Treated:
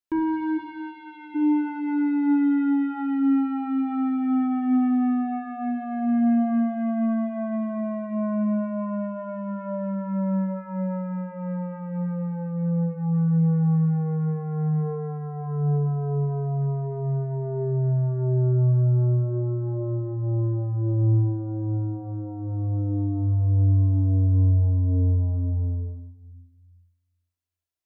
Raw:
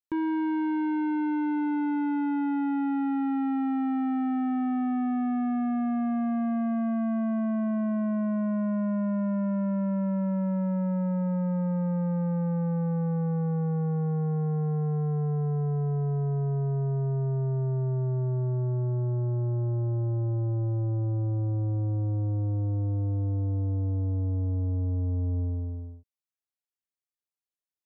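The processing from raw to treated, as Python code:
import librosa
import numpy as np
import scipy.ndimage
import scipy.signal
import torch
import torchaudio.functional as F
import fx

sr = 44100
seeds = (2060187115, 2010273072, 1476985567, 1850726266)

y = fx.highpass(x, sr, hz=1400.0, slope=12, at=(0.57, 1.34), fade=0.02)
y = fx.room_shoebox(y, sr, seeds[0], volume_m3=3700.0, walls='furnished', distance_m=3.0)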